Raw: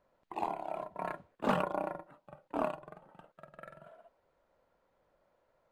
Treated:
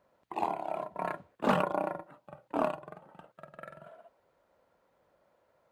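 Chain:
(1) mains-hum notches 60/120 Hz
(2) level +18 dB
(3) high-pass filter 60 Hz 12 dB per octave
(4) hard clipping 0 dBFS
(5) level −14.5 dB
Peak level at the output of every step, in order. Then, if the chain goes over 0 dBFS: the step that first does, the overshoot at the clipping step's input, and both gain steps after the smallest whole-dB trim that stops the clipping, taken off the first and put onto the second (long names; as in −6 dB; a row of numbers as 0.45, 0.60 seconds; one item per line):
−16.0, +2.0, +3.0, 0.0, −14.5 dBFS
step 2, 3.0 dB
step 2 +15 dB, step 5 −11.5 dB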